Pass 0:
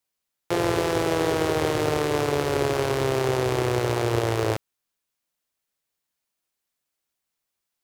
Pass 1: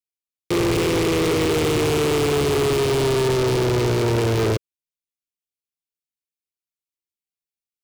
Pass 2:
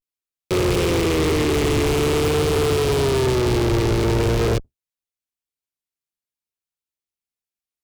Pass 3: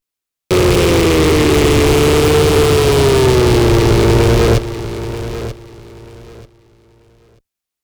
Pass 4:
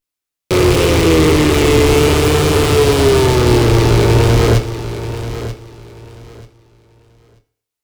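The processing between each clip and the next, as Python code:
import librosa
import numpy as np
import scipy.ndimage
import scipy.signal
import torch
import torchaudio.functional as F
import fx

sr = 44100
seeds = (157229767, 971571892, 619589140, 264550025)

y1 = scipy.signal.sosfilt(scipy.signal.ellip(3, 1.0, 40, [450.0, 2200.0], 'bandstop', fs=sr, output='sos'), x)
y1 = fx.leveller(y1, sr, passes=5)
y1 = y1 * librosa.db_to_amplitude(-3.5)
y2 = fx.octave_divider(y1, sr, octaves=2, level_db=-3.0)
y2 = fx.vibrato(y2, sr, rate_hz=0.47, depth_cents=98.0)
y3 = fx.echo_feedback(y2, sr, ms=936, feedback_pct=22, wet_db=-12)
y3 = y3 * librosa.db_to_amplitude(8.0)
y4 = fx.doubler(y3, sr, ms=25.0, db=-10.5)
y4 = fx.rev_fdn(y4, sr, rt60_s=0.62, lf_ratio=0.8, hf_ratio=1.0, size_ms=20.0, drr_db=10.0)
y4 = y4 * librosa.db_to_amplitude(-1.0)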